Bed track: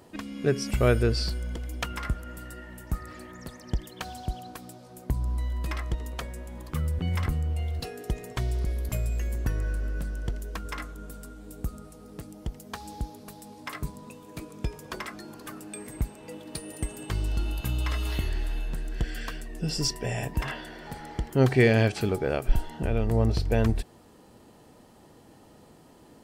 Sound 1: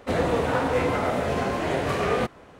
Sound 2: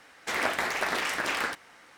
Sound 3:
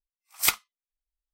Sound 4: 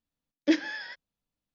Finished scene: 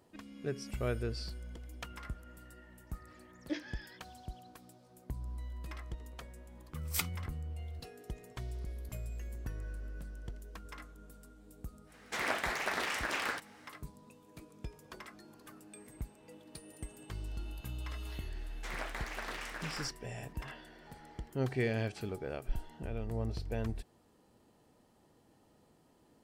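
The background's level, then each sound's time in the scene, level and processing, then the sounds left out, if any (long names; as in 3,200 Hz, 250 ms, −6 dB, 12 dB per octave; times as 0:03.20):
bed track −13 dB
0:03.02: mix in 4 −15 dB + double-tracking delay 17 ms −4 dB
0:06.51: mix in 3 −12 dB
0:11.85: mix in 2 −6 dB, fades 0.10 s
0:18.36: mix in 2 −13.5 dB
not used: 1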